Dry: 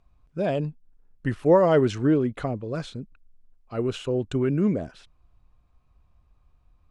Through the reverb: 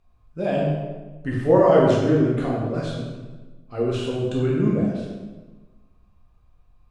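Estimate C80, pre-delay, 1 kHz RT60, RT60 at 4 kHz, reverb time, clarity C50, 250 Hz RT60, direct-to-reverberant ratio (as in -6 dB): 2.5 dB, 9 ms, 1.2 s, 0.95 s, 1.3 s, 0.5 dB, 1.5 s, -5.0 dB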